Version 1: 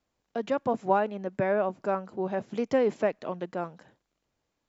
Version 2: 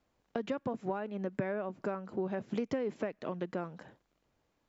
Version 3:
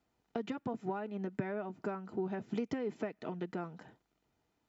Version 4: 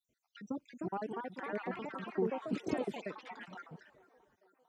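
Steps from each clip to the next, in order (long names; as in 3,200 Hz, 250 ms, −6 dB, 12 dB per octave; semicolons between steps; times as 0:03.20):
high-shelf EQ 3,900 Hz −8 dB; downward compressor 6 to 1, threshold −33 dBFS, peak gain reduction 14 dB; dynamic equaliser 750 Hz, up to −6 dB, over −48 dBFS, Q 1.1; level +4 dB
notch comb filter 550 Hz; level −1 dB
time-frequency cells dropped at random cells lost 65%; delay with a band-pass on its return 451 ms, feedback 62%, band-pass 810 Hz, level −20 dB; delay with pitch and tempo change per echo 387 ms, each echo +3 semitones, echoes 3; level +2.5 dB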